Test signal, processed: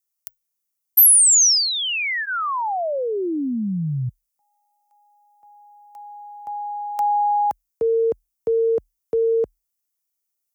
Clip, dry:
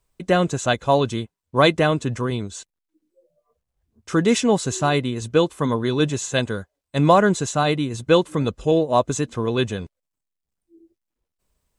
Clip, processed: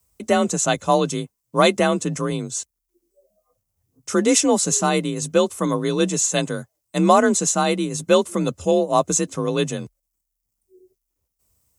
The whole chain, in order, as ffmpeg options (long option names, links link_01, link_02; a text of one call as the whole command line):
ffmpeg -i in.wav -af "aexciter=amount=4.3:drive=2.3:freq=5200,bandreject=frequency=1600:width=12,afreqshift=38" out.wav